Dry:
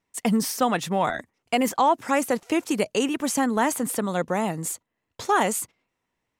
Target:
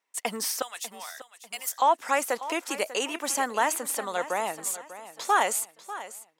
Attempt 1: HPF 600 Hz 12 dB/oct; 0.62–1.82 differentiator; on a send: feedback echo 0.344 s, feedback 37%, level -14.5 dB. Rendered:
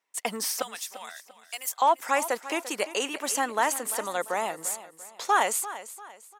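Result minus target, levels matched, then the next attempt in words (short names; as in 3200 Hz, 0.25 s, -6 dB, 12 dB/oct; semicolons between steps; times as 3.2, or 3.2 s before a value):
echo 0.25 s early
HPF 600 Hz 12 dB/oct; 0.62–1.82 differentiator; on a send: feedback echo 0.594 s, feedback 37%, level -14.5 dB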